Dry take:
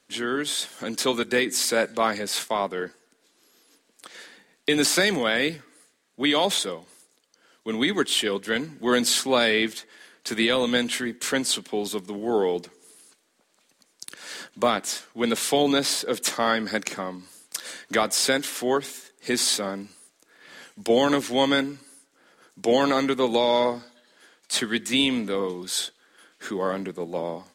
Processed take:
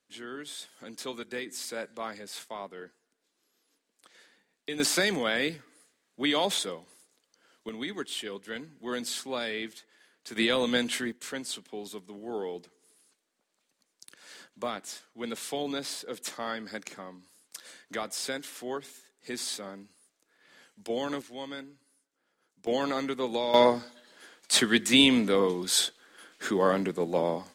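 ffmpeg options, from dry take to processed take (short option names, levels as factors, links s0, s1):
-af "asetnsamples=n=441:p=0,asendcmd='4.8 volume volume -5dB;7.69 volume volume -12.5dB;10.36 volume volume -4dB;11.12 volume volume -12dB;21.22 volume volume -18.5dB;22.67 volume volume -8.5dB;23.54 volume volume 2dB',volume=0.2"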